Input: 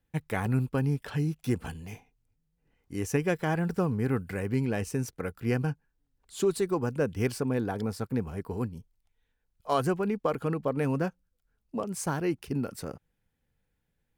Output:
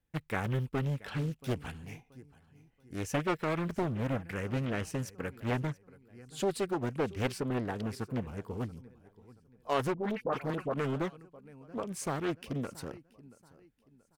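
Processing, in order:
repeating echo 680 ms, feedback 37%, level −20 dB
dynamic equaliser 2,600 Hz, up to +6 dB, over −51 dBFS, Q 1
0:09.94–0:10.74: all-pass dispersion highs, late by 76 ms, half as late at 1,000 Hz
highs frequency-modulated by the lows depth 0.88 ms
level −4.5 dB

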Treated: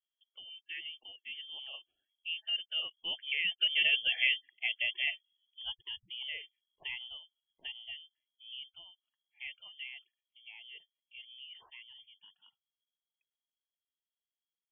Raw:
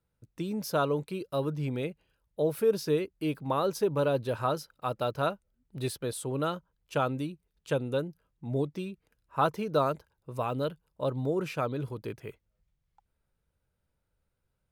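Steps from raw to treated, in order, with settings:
source passing by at 0:04.22, 19 m/s, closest 11 metres
spectral peaks only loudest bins 64
voice inversion scrambler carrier 3,300 Hz

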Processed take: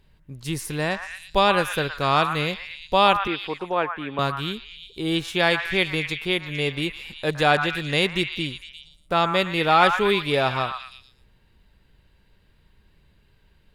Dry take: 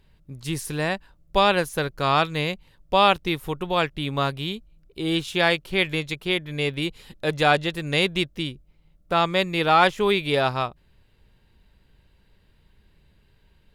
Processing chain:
0:03.27–0:04.19: three-way crossover with the lows and the highs turned down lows −16 dB, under 220 Hz, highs −22 dB, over 2,400 Hz
echo through a band-pass that steps 115 ms, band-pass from 1,300 Hz, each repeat 0.7 octaves, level −4 dB

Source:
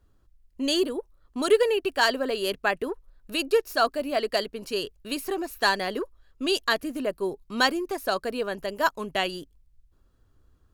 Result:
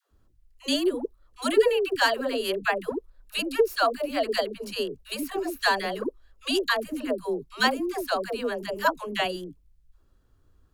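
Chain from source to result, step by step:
dynamic equaliser 5,700 Hz, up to −5 dB, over −47 dBFS, Q 2.5
all-pass dispersion lows, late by 110 ms, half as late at 470 Hz

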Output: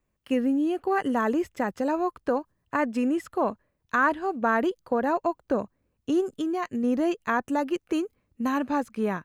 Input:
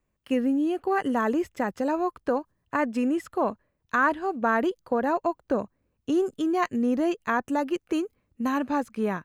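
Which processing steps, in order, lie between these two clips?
0:06.20–0:06.84: downward compressor, threshold −25 dBFS, peak gain reduction 6.5 dB

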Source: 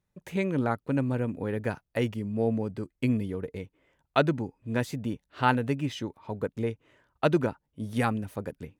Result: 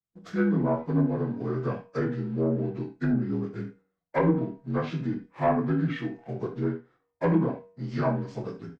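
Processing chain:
partials spread apart or drawn together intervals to 80%
noise gate −59 dBFS, range −13 dB
hum removal 95 Hz, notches 28
leveller curve on the samples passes 1
soft clipping −13 dBFS, distortion −25 dB
treble cut that deepens with the level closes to 1,400 Hz, closed at −19.5 dBFS
double-tracking delay 25 ms −8 dB
single-tap delay 80 ms −21 dB
on a send at −6 dB: convolution reverb, pre-delay 6 ms
on the sum: level −1.5 dB

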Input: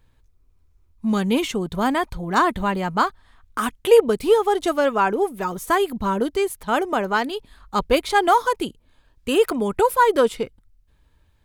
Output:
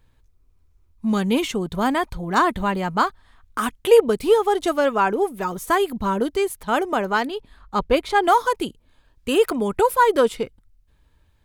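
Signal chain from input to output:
0:07.27–0:08.24: high-shelf EQ 4,300 Hz −8.5 dB

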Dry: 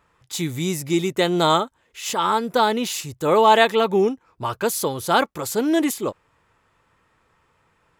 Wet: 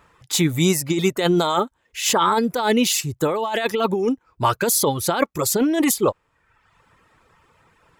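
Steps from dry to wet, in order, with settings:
reverb reduction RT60 0.84 s
compressor whose output falls as the input rises −23 dBFS, ratio −1
level +4.5 dB

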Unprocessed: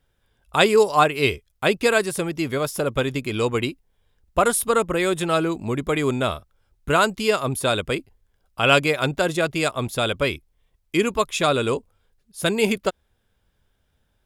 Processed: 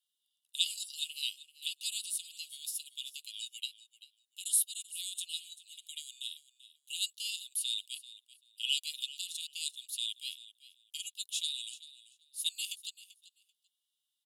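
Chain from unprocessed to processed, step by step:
Chebyshev high-pass with heavy ripple 2,800 Hz, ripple 6 dB
repeating echo 388 ms, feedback 16%, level −17 dB
level −3 dB

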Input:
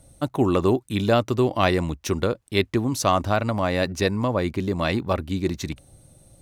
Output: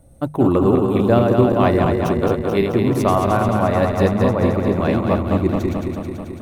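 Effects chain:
feedback delay that plays each chunk backwards 109 ms, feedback 82%, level −4 dB
parametric band 5,300 Hz −14.5 dB 2.6 octaves
mains-hum notches 50/100/150 Hz
level +4 dB

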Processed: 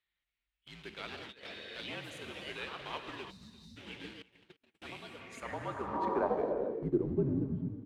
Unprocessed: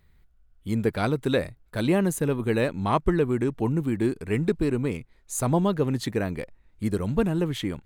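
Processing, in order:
fade-out on the ending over 0.94 s
in parallel at −6.5 dB: bit reduction 5 bits
on the sum: reverb whose tail is shaped and stops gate 490 ms flat, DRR 4.5 dB
delay with pitch and tempo change per echo 267 ms, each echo +3 semitones, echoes 2, each echo −6 dB
0:03.30–0:03.77: gain on a spectral selection 320–3,600 Hz −26 dB
frequency shifter −58 Hz
spectral tilt −2 dB per octave
0:04.22–0:04.82: noise gate −9 dBFS, range −43 dB
on a send: single-tap delay 344 ms −21.5 dB
on the sum: band-pass filter sweep 3,100 Hz → 210 Hz, 0:05.06–0:07.50
0:01.17–0:01.77: compressor whose output falls as the input rises −42 dBFS, ratio −0.5
0:05.93–0:06.83: octave-band graphic EQ 125/250/500/1,000 Hz −9/+7/+4/+9 dB
level −5 dB

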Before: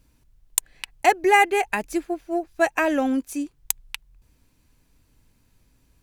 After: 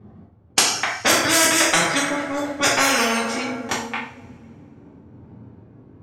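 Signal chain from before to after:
pitch glide at a constant tempo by −5 semitones ending unshifted
high-pass filter 99 Hz 24 dB per octave
parametric band 10,000 Hz −8 dB 0.24 octaves
low-pass that shuts in the quiet parts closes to 600 Hz, open at −19 dBFS
coupled-rooms reverb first 0.43 s, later 2 s, from −25 dB, DRR −8 dB
every bin compressed towards the loudest bin 4 to 1
level −3 dB

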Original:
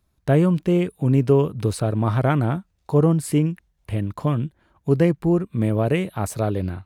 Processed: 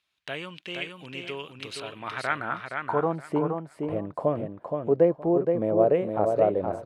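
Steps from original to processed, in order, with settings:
in parallel at +2 dB: downward compressor, threshold −27 dBFS, peak gain reduction 14.5 dB
on the sum: band-pass filter sweep 2,900 Hz → 590 Hz, 0:01.83–0:03.43
repeating echo 470 ms, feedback 20%, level −5 dB
level +2.5 dB

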